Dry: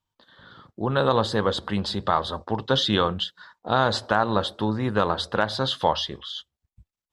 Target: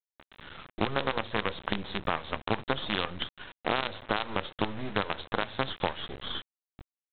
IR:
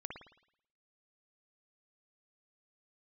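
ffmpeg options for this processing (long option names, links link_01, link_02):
-af "acompressor=threshold=-30dB:ratio=16,aresample=8000,acrusher=bits=5:dc=4:mix=0:aa=0.000001,aresample=44100,volume=4.5dB"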